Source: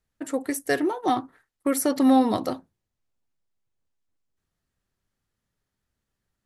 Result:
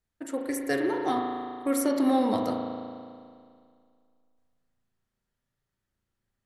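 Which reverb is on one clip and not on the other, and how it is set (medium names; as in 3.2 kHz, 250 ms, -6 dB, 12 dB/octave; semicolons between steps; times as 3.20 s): spring tank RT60 2.2 s, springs 36 ms, chirp 25 ms, DRR 1 dB; trim -5 dB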